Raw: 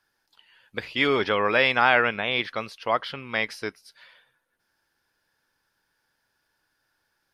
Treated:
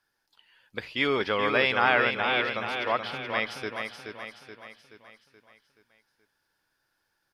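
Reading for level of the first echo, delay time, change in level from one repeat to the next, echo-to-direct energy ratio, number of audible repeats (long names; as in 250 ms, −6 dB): −6.0 dB, 427 ms, −6.0 dB, −5.0 dB, 5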